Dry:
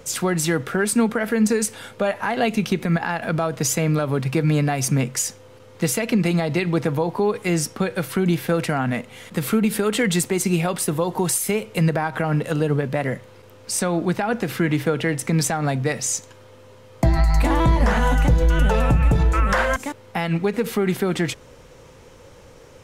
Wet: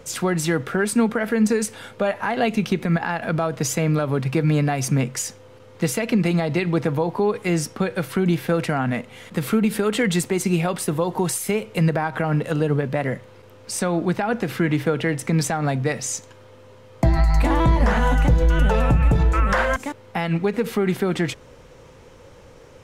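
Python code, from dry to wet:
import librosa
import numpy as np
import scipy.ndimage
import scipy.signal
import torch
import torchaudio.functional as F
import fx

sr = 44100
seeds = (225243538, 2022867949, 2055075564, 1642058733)

y = fx.high_shelf(x, sr, hz=5200.0, db=-5.5)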